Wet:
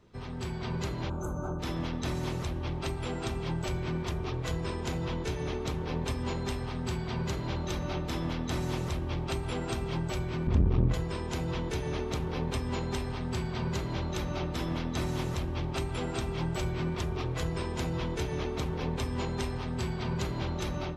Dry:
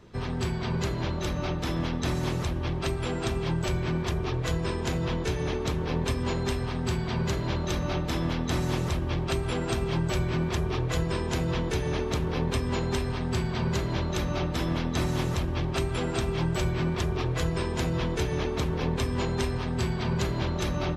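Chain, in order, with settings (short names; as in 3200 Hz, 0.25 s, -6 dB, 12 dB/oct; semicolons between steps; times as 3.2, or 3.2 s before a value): 1.1–1.6 spectral gain 1600–6100 Hz -28 dB; 10.47–10.94 RIAA curve playback; notch 1700 Hz, Q 23; on a send at -19.5 dB: bell 870 Hz +14.5 dB 0.6 oct + reverb RT60 1.3 s, pre-delay 4 ms; on the sum: AGC gain up to 4 dB; core saturation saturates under 140 Hz; gain -8.5 dB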